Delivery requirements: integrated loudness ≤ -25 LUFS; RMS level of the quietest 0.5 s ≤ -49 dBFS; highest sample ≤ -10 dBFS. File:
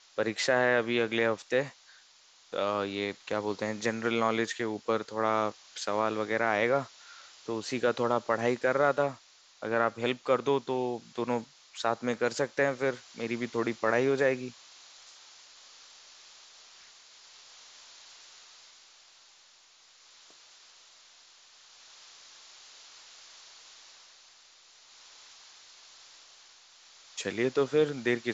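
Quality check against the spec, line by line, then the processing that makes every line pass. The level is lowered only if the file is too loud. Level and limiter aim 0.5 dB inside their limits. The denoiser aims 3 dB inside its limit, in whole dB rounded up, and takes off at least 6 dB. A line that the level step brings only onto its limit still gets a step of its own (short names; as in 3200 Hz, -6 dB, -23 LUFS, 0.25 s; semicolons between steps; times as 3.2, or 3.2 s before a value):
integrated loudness -30.0 LUFS: OK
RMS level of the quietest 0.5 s -60 dBFS: OK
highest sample -12.0 dBFS: OK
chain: none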